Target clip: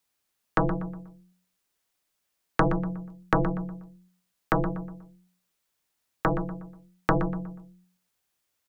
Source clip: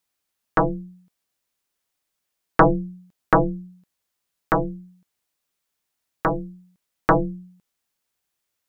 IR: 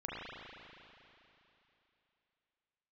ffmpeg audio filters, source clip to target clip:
-filter_complex "[0:a]acrossover=split=250|1600[a][b][c];[a]acompressor=threshold=-24dB:ratio=4[d];[b]acompressor=threshold=-26dB:ratio=4[e];[c]acompressor=threshold=-37dB:ratio=4[f];[d][e][f]amix=inputs=3:normalize=0,asplit=2[g][h];[h]adelay=121,lowpass=f=2.4k:p=1,volume=-10dB,asplit=2[i][j];[j]adelay=121,lowpass=f=2.4k:p=1,volume=0.4,asplit=2[k][l];[l]adelay=121,lowpass=f=2.4k:p=1,volume=0.4,asplit=2[m][n];[n]adelay=121,lowpass=f=2.4k:p=1,volume=0.4[o];[g][i][k][m][o]amix=inputs=5:normalize=0,volume=1dB"

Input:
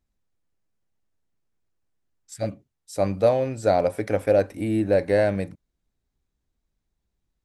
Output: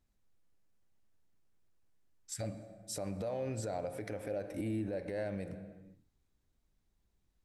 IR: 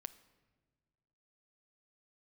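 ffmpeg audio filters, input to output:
-filter_complex "[0:a]acompressor=threshold=-28dB:ratio=10[a];[1:a]atrim=start_sample=2205,afade=t=out:st=0.42:d=0.01,atrim=end_sample=18963,asetrate=30429,aresample=44100[b];[a][b]afir=irnorm=-1:irlink=0,alimiter=level_in=8dB:limit=-24dB:level=0:latency=1:release=123,volume=-8dB,volume=3dB"

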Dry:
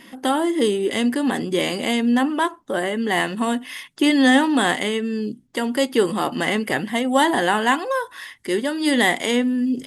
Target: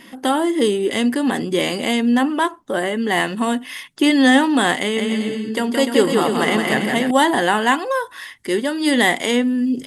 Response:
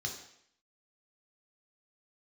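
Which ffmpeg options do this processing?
-filter_complex "[0:a]asettb=1/sr,asplit=3[a][b][c];[a]atrim=end=4.794[d];[b]atrim=start=4.79:end=7.11,asetpts=PTS-STARTPTS,afade=t=in:d=0.004:c=qsin,afade=t=out:st=2.316:d=0.004:c=qsin,aecho=1:1:170|297.5|393.1|464.8|518.6:0.631|0.398|0.251|0.158|0.1,atrim=end_sample=102312[e];[c]atrim=start=7.106[f];[d][e]acrossfade=d=0.004:c1=hsin:c2=qsin[g];[g][f]acrossfade=d=0.004:c1=qsin:c2=hsin,volume=2dB"

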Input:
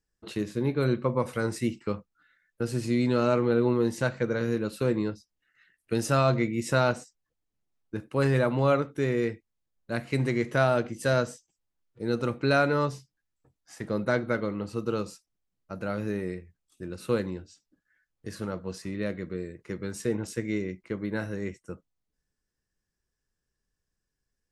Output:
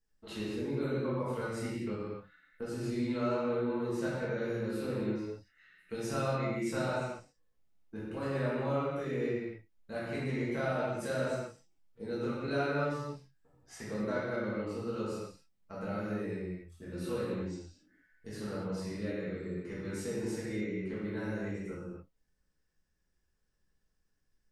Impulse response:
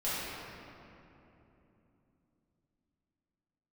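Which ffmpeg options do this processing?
-filter_complex "[0:a]acompressor=threshold=-41dB:ratio=2[a];[1:a]atrim=start_sample=2205,afade=t=out:st=0.34:d=0.01,atrim=end_sample=15435[b];[a][b]afir=irnorm=-1:irlink=0,volume=-4dB"

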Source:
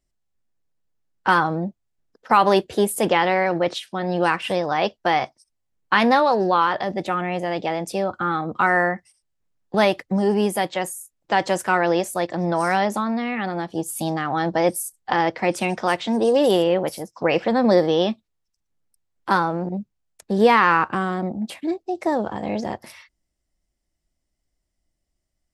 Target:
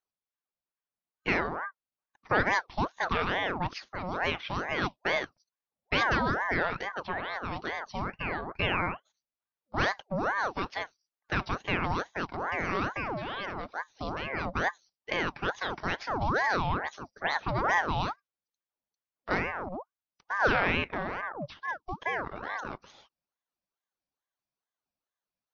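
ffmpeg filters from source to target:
-filter_complex "[0:a]asettb=1/sr,asplit=3[a][b][c];[a]atrim=end=4.684[d];[b]atrim=start=4.68:end=6.04,asetpts=PTS-STARTPTS,afade=t=in:d=0.004:c=qsin,afade=t=out:st=1.356:d=0.004:c=qsin,lowshelf=f=210:g=11[e];[c]atrim=start=6.036[f];[d][e]acrossfade=d=0.004:c1=hsin:c2=qsin[g];[g][f]acrossfade=d=0.004:c1=qsin:c2=hsin,afftfilt=real='re*between(b*sr/4096,140,5500)':imag='im*between(b*sr/4096,140,5500)':win_size=4096:overlap=0.75,aeval=exprs='val(0)*sin(2*PI*880*n/s+880*0.6/2.3*sin(2*PI*2.3*n/s))':c=same,volume=-7.5dB"

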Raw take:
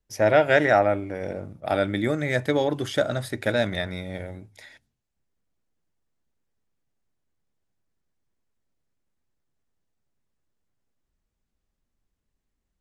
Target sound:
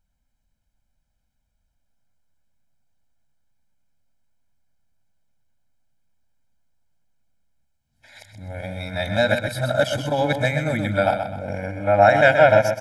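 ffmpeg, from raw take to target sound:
-af "areverse,bandreject=f=60:t=h:w=6,bandreject=f=120:t=h:w=6,bandreject=f=180:t=h:w=6,aecho=1:1:1.3:0.87,aecho=1:1:127|254|381|508:0.422|0.156|0.0577|0.0214,volume=1dB"

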